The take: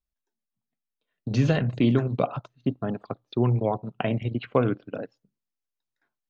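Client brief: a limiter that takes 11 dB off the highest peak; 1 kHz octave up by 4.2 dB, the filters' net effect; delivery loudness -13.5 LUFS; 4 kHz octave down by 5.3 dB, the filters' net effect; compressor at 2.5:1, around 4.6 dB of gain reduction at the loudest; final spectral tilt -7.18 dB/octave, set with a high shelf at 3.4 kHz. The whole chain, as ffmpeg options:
-af "equalizer=f=1000:t=o:g=6.5,highshelf=f=3400:g=-7,equalizer=f=4000:t=o:g=-3.5,acompressor=threshold=0.0794:ratio=2.5,volume=7.94,alimiter=limit=0.841:level=0:latency=1"

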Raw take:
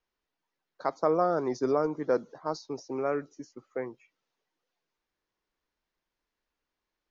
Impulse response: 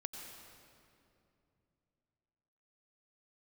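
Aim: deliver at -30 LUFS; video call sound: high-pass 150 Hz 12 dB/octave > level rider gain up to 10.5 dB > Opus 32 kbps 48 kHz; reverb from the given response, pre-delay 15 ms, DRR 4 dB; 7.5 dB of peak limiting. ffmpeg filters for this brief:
-filter_complex "[0:a]alimiter=limit=0.0891:level=0:latency=1,asplit=2[s0][s1];[1:a]atrim=start_sample=2205,adelay=15[s2];[s1][s2]afir=irnorm=-1:irlink=0,volume=0.794[s3];[s0][s3]amix=inputs=2:normalize=0,highpass=150,dynaudnorm=m=3.35,volume=1.33" -ar 48000 -c:a libopus -b:a 32k

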